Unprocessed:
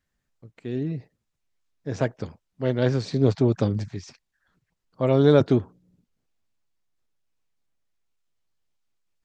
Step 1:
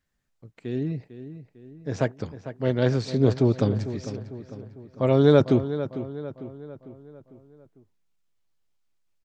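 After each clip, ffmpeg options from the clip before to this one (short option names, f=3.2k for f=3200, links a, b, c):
-filter_complex "[0:a]asplit=2[a][b];[b]adelay=450,lowpass=f=3.2k:p=1,volume=-12dB,asplit=2[c][d];[d]adelay=450,lowpass=f=3.2k:p=1,volume=0.5,asplit=2[e][f];[f]adelay=450,lowpass=f=3.2k:p=1,volume=0.5,asplit=2[g][h];[h]adelay=450,lowpass=f=3.2k:p=1,volume=0.5,asplit=2[i][j];[j]adelay=450,lowpass=f=3.2k:p=1,volume=0.5[k];[a][c][e][g][i][k]amix=inputs=6:normalize=0"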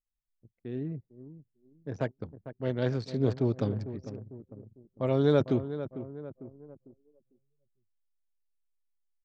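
-af "anlmdn=2.51,volume=-7dB"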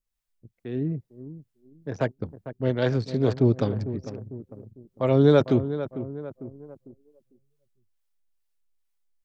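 -filter_complex "[0:a]acrossover=split=490[a][b];[a]aeval=exprs='val(0)*(1-0.5/2+0.5/2*cos(2*PI*2.3*n/s))':c=same[c];[b]aeval=exprs='val(0)*(1-0.5/2-0.5/2*cos(2*PI*2.3*n/s))':c=same[d];[c][d]amix=inputs=2:normalize=0,volume=8.5dB"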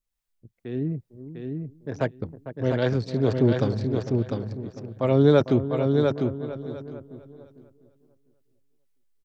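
-af "aecho=1:1:700|1400|2100:0.596|0.0893|0.0134"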